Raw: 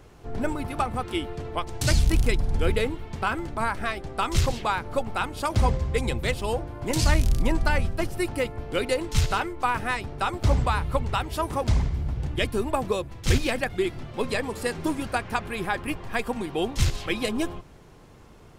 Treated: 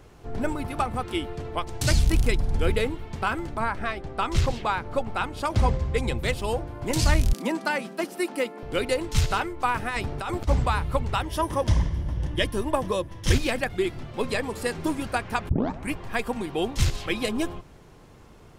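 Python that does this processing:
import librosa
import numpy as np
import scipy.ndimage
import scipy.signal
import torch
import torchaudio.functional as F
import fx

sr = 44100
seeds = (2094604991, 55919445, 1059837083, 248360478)

y = fx.lowpass(x, sr, hz=fx.line((3.58, 3100.0), (6.17, 7800.0)), slope=6, at=(3.58, 6.17), fade=0.02)
y = fx.steep_highpass(y, sr, hz=180.0, slope=72, at=(7.33, 8.63))
y = fx.over_compress(y, sr, threshold_db=-30.0, ratio=-1.0, at=(9.88, 10.47), fade=0.02)
y = fx.ripple_eq(y, sr, per_octave=1.2, db=7, at=(11.21, 13.32))
y = fx.edit(y, sr, fx.tape_start(start_s=15.49, length_s=0.43), tone=tone)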